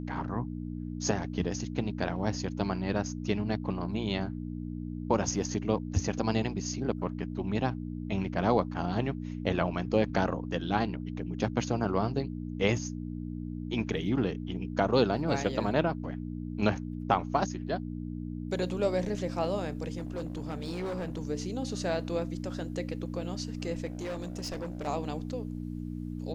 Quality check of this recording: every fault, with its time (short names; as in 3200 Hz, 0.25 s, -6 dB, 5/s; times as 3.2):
hum 60 Hz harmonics 5 -37 dBFS
19.97–21.2 clipped -31 dBFS
23.85–24.88 clipped -32.5 dBFS